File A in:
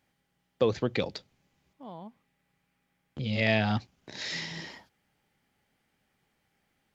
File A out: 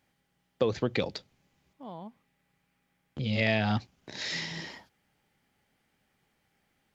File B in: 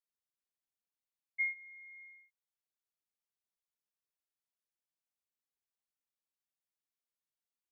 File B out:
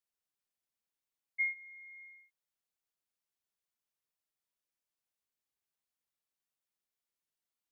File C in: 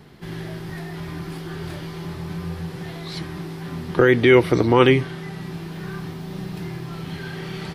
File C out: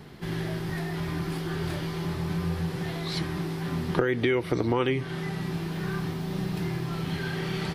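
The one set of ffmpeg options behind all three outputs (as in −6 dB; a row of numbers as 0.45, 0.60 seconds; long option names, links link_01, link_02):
-af "acompressor=threshold=-22dB:ratio=12,volume=1dB"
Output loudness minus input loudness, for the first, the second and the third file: −0.5, +1.0, −7.0 LU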